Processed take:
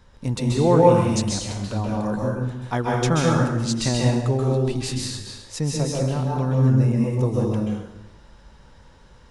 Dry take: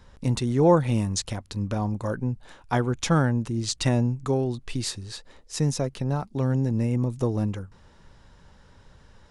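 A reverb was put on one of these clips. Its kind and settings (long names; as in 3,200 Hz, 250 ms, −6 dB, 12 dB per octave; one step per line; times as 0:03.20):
dense smooth reverb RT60 0.98 s, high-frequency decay 0.85×, pre-delay 120 ms, DRR −3 dB
level −1 dB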